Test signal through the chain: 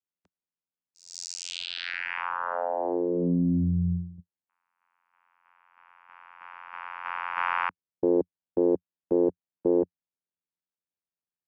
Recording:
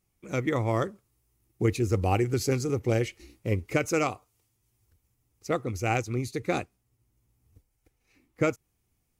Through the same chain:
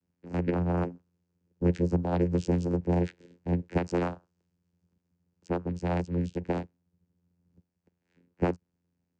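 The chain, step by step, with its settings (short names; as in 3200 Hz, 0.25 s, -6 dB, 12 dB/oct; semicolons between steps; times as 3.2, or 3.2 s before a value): vocoder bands 8, saw 87.4 Hz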